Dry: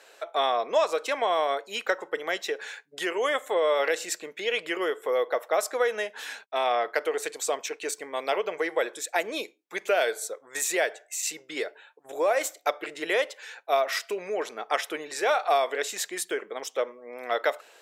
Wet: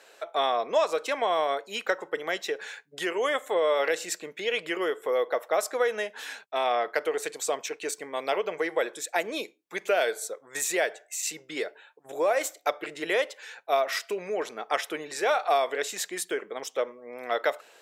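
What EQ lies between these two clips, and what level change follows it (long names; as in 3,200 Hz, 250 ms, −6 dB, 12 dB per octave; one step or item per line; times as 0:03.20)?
parametric band 130 Hz +8 dB 1.4 octaves
−1.0 dB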